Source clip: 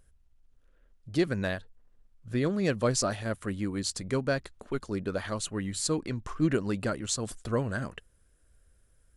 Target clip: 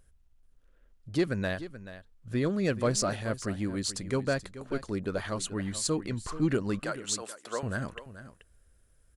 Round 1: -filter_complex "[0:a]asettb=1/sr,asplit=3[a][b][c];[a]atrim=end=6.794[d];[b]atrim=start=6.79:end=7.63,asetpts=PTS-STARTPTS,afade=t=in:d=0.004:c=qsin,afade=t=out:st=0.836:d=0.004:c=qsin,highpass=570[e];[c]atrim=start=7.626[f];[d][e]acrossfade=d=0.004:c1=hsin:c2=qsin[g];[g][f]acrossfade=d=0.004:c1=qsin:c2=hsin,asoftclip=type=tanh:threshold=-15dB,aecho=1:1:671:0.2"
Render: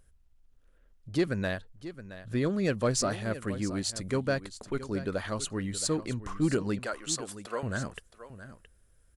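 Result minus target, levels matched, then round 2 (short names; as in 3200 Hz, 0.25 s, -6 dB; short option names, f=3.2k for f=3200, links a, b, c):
echo 0.239 s late
-filter_complex "[0:a]asettb=1/sr,asplit=3[a][b][c];[a]atrim=end=6.794[d];[b]atrim=start=6.79:end=7.63,asetpts=PTS-STARTPTS,afade=t=in:d=0.004:c=qsin,afade=t=out:st=0.836:d=0.004:c=qsin,highpass=570[e];[c]atrim=start=7.626[f];[d][e]acrossfade=d=0.004:c1=hsin:c2=qsin[g];[g][f]acrossfade=d=0.004:c1=qsin:c2=hsin,asoftclip=type=tanh:threshold=-15dB,aecho=1:1:432:0.2"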